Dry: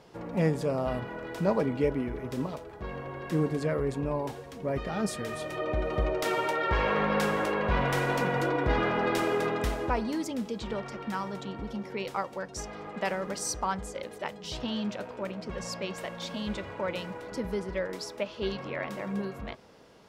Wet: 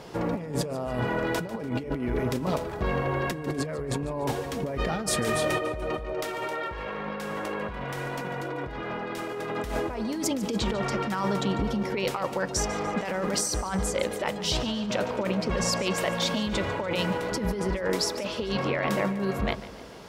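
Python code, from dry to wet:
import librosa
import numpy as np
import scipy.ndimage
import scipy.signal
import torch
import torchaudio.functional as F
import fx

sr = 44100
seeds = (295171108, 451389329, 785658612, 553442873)

p1 = fx.high_shelf(x, sr, hz=7800.0, db=3.0)
p2 = fx.over_compress(p1, sr, threshold_db=-36.0, ratio=-1.0)
p3 = p2 + fx.echo_feedback(p2, sr, ms=146, feedback_pct=50, wet_db=-16.0, dry=0)
y = F.gain(torch.from_numpy(p3), 6.5).numpy()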